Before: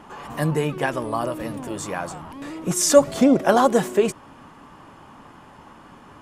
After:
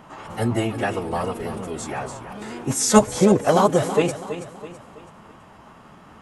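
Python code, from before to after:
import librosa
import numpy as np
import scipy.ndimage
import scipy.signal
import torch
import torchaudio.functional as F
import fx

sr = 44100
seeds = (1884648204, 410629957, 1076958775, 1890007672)

p1 = fx.pitch_keep_formants(x, sr, semitones=-5.0)
y = p1 + fx.echo_feedback(p1, sr, ms=328, feedback_pct=41, wet_db=-11.5, dry=0)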